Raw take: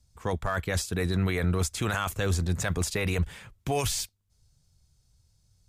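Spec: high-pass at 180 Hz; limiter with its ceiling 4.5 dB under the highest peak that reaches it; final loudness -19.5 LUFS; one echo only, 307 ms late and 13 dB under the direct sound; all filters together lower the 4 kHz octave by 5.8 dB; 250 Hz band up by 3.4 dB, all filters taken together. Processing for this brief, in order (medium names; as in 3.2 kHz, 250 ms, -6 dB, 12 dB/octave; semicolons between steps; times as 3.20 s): high-pass 180 Hz; peaking EQ 250 Hz +8 dB; peaking EQ 4 kHz -7.5 dB; peak limiter -20 dBFS; delay 307 ms -13 dB; trim +11.5 dB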